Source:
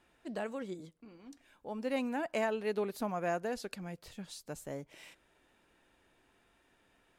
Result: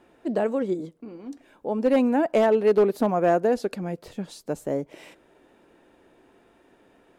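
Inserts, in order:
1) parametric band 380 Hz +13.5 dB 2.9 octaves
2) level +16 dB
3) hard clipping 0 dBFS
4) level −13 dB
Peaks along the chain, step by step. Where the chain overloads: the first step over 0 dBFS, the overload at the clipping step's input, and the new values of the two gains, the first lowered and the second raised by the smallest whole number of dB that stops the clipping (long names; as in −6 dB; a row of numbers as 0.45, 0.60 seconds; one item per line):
−12.0, +4.0, 0.0, −13.0 dBFS
step 2, 4.0 dB
step 2 +12 dB, step 4 −9 dB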